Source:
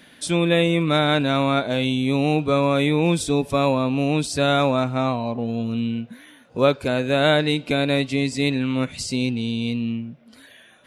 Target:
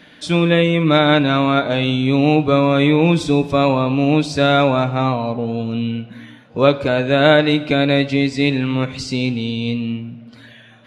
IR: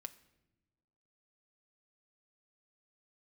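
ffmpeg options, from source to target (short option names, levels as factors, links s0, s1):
-filter_complex "[0:a]asplit=2[s0][s1];[1:a]atrim=start_sample=2205,asetrate=25578,aresample=44100,lowpass=5900[s2];[s1][s2]afir=irnorm=-1:irlink=0,volume=3.16[s3];[s0][s3]amix=inputs=2:normalize=0,volume=0.501"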